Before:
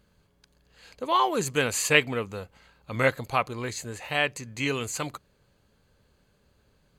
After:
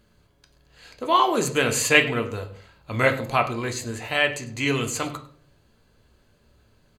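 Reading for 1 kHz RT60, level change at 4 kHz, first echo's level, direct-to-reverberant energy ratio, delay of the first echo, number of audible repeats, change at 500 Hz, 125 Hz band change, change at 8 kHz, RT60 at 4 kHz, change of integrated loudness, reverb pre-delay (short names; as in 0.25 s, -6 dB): 0.45 s, +4.0 dB, -19.0 dB, 5.0 dB, 0.101 s, 1, +4.0 dB, +4.5 dB, +3.5 dB, 0.35 s, +4.0 dB, 3 ms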